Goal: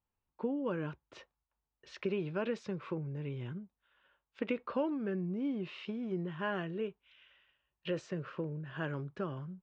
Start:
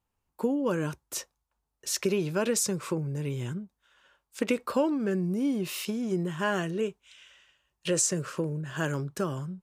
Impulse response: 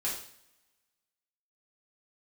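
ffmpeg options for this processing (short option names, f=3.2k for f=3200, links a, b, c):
-af "lowpass=f=3.3k:w=0.5412,lowpass=f=3.3k:w=1.3066,volume=-7.5dB"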